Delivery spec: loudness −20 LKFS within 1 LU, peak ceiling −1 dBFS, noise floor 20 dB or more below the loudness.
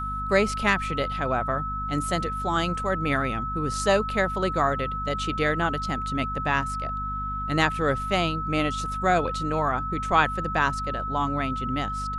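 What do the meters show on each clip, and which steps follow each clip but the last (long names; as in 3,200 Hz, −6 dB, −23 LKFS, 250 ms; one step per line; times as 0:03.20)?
mains hum 50 Hz; hum harmonics up to 250 Hz; level of the hum −32 dBFS; interfering tone 1,300 Hz; level of the tone −29 dBFS; integrated loudness −25.5 LKFS; sample peak −6.5 dBFS; target loudness −20.0 LKFS
→ mains-hum notches 50/100/150/200/250 Hz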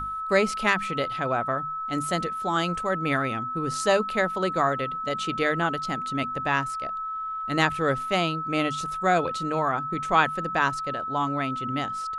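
mains hum none found; interfering tone 1,300 Hz; level of the tone −29 dBFS
→ notch filter 1,300 Hz, Q 30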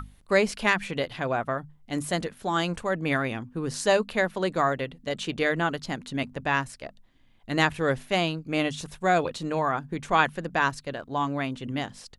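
interfering tone none found; integrated loudness −27.5 LKFS; sample peak −7.0 dBFS; target loudness −20.0 LKFS
→ level +7.5 dB
brickwall limiter −1 dBFS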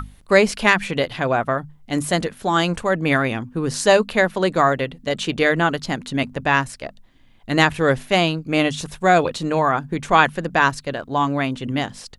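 integrated loudness −20.0 LKFS; sample peak −1.0 dBFS; background noise floor −50 dBFS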